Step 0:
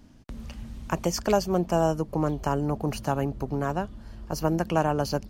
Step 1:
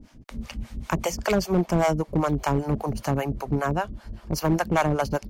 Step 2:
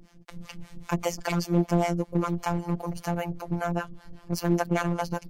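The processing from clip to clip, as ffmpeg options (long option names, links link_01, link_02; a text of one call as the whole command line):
ffmpeg -i in.wav -filter_complex "[0:a]acrossover=split=520[link_01][link_02];[link_01]aeval=exprs='val(0)*(1-1/2+1/2*cos(2*PI*5.1*n/s))':channel_layout=same[link_03];[link_02]aeval=exprs='val(0)*(1-1/2-1/2*cos(2*PI*5.1*n/s))':channel_layout=same[link_04];[link_03][link_04]amix=inputs=2:normalize=0,asoftclip=type=hard:threshold=-23.5dB,equalizer=frequency=2200:width=6.9:gain=5,volume=8dB" out.wav
ffmpeg -i in.wav -af "afftfilt=real='hypot(re,im)*cos(PI*b)':imag='0':win_size=1024:overlap=0.75" out.wav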